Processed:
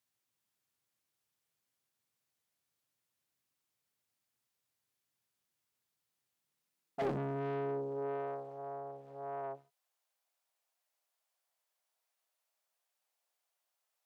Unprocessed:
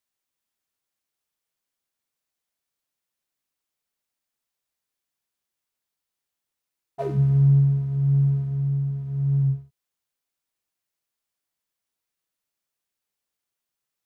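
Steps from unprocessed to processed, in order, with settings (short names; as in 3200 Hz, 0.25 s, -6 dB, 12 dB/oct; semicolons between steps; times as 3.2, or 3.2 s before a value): tube stage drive 32 dB, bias 0.35; high-pass sweep 110 Hz -> 660 Hz, 6.21–8.53; Doppler distortion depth 0.73 ms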